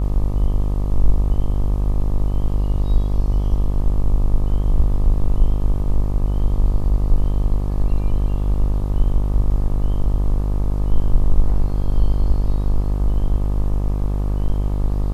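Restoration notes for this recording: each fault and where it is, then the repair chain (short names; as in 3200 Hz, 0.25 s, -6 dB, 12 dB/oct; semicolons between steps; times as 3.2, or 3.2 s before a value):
buzz 50 Hz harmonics 25 -20 dBFS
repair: de-hum 50 Hz, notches 25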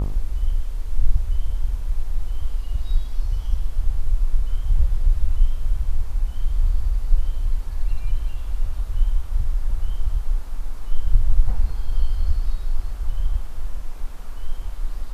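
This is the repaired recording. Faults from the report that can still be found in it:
none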